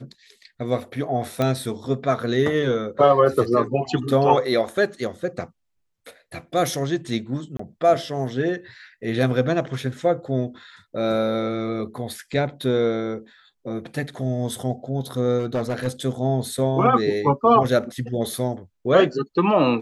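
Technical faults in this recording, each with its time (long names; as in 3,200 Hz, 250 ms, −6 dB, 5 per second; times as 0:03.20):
0:01.42: click −10 dBFS
0:07.57–0:07.59: drop-out 24 ms
0:15.38–0:15.88: clipping −19 dBFS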